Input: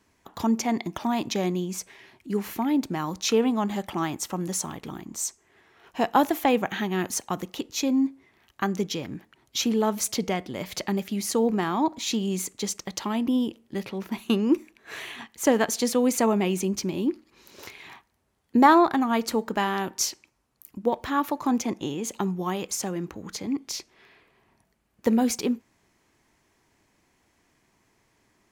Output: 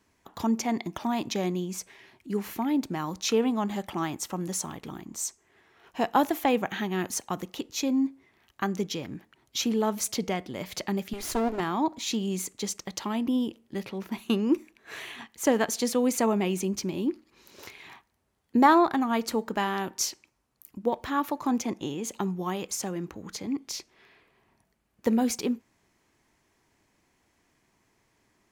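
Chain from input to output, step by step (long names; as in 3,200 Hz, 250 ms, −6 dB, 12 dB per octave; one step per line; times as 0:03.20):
0:11.13–0:11.60: lower of the sound and its delayed copy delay 2.9 ms
level −2.5 dB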